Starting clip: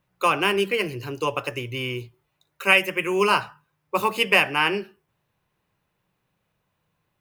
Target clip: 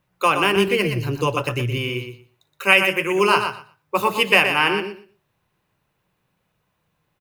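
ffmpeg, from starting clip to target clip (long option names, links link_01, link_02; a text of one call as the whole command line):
ffmpeg -i in.wav -filter_complex "[0:a]asettb=1/sr,asplit=3[link_01][link_02][link_03];[link_01]atrim=end=0.564[link_04];[link_02]atrim=start=0.56:end=1.78,asetpts=PTS-STARTPTS,afade=type=in:duration=0.004:curve=qsin,afade=type=out:start_time=1.216:duration=0.004:curve=qsin,bass=frequency=250:gain=9,treble=frequency=4000:gain=2[link_05];[link_03]atrim=start=1.776[link_06];[link_04][link_05]acrossfade=duration=0.004:curve1=hsin:curve2=qsin[link_07];[link_07][link_06]acrossfade=duration=0.004:curve1=qsin:curve2=hsin,aecho=1:1:120|240|360:0.422|0.0675|0.0108,volume=2.5dB" out.wav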